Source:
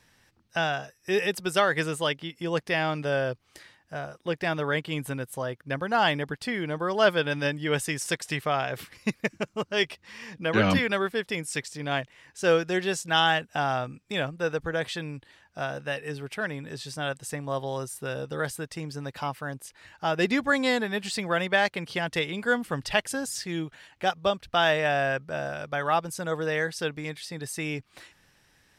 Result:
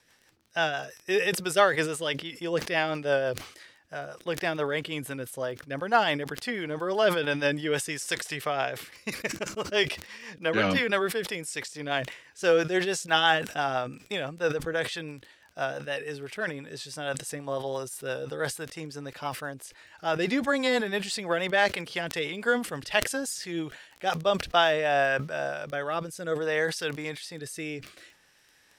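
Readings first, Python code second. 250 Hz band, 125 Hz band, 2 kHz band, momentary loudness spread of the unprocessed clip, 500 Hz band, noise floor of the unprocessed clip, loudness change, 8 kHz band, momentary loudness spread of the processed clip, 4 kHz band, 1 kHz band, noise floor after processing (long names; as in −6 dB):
−2.0 dB, −4.5 dB, −0.5 dB, 12 LU, +0.5 dB, −65 dBFS, −0.5 dB, +1.0 dB, 13 LU, −0.5 dB, −1.0 dB, −61 dBFS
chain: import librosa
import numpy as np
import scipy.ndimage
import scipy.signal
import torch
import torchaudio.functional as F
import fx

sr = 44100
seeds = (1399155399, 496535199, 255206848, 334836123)

y = fx.bass_treble(x, sr, bass_db=-11, treble_db=1)
y = fx.hpss(y, sr, part='harmonic', gain_db=4)
y = fx.dmg_crackle(y, sr, seeds[0], per_s=12.0, level_db=-37.0)
y = fx.rotary_switch(y, sr, hz=6.0, then_hz=0.6, switch_at_s=24.06)
y = fx.sustainer(y, sr, db_per_s=110.0)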